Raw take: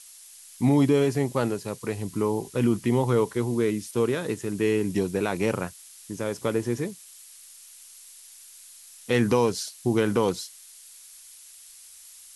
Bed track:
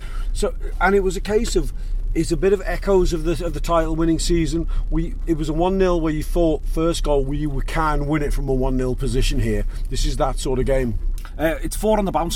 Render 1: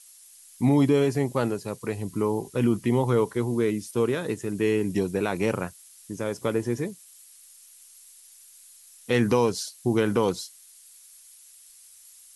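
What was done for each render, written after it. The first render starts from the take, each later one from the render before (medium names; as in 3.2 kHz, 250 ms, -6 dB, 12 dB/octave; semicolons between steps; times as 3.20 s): noise reduction 6 dB, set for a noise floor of -49 dBFS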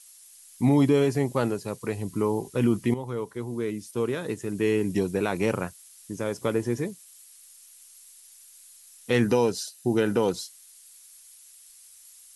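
2.94–4.79 s: fade in, from -12 dB; 9.25–10.34 s: comb of notches 1.1 kHz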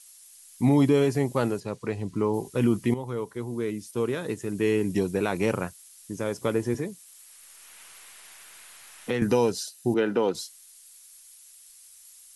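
1.60–2.34 s: distance through air 70 m; 6.74–9.22 s: three bands compressed up and down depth 70%; 9.94–10.35 s: three-band isolator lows -17 dB, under 180 Hz, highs -17 dB, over 4.4 kHz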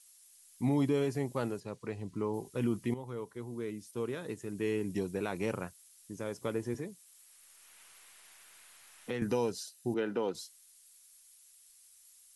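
trim -9 dB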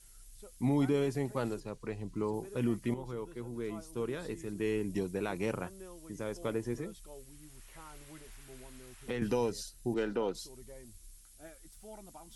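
add bed track -32 dB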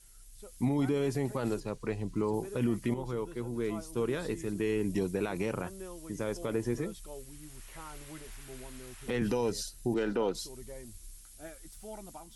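level rider gain up to 5 dB; peak limiter -21 dBFS, peak gain reduction 7 dB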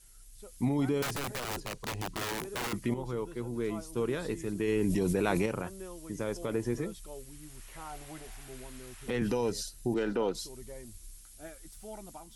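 1.02–2.73 s: integer overflow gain 29 dB; 4.68–5.46 s: level flattener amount 100%; 7.81–8.48 s: peaking EQ 730 Hz +13.5 dB 0.3 oct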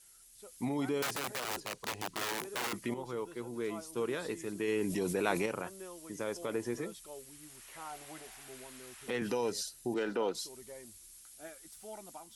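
high-pass 400 Hz 6 dB/octave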